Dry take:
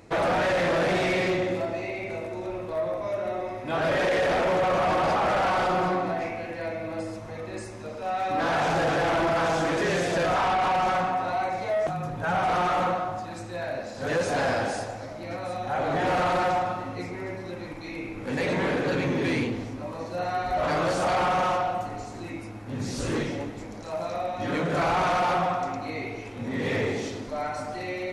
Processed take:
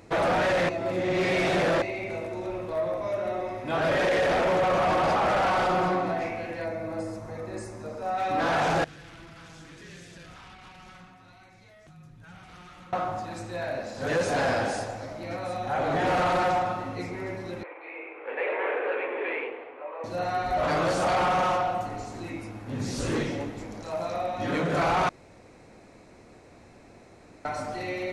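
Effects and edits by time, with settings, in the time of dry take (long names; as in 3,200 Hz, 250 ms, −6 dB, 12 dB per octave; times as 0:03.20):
0:00.69–0:01.82: reverse
0:06.64–0:08.18: parametric band 3,000 Hz −9 dB 1 octave
0:08.84–0:12.93: guitar amp tone stack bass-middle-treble 6-0-2
0:17.63–0:20.04: elliptic band-pass filter 420–2,600 Hz
0:25.09–0:27.45: fill with room tone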